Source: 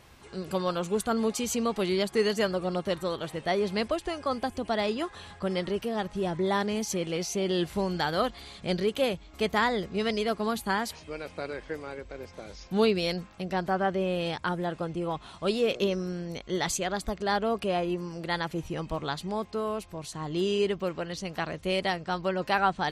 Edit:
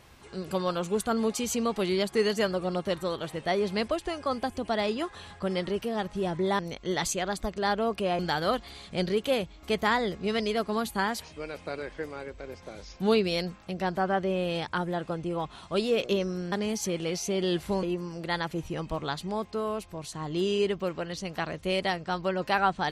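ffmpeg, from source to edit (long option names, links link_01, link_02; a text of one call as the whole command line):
ffmpeg -i in.wav -filter_complex "[0:a]asplit=5[link_01][link_02][link_03][link_04][link_05];[link_01]atrim=end=6.592[link_06];[link_02]atrim=start=16.228:end=17.832[link_07];[link_03]atrim=start=7.898:end=16.232[link_08];[link_04]atrim=start=6.588:end=7.902[link_09];[link_05]atrim=start=17.828[link_10];[link_06][link_07]acrossfade=duration=0.004:curve1=hsin:curve2=hsin[link_11];[link_11][link_08]acrossfade=duration=0.004:curve1=hsin:curve2=hsin[link_12];[link_12][link_09]acrossfade=duration=0.004:curve1=hsin:curve2=hsin[link_13];[link_13][link_10]acrossfade=duration=0.004:curve1=hsin:curve2=hsin" out.wav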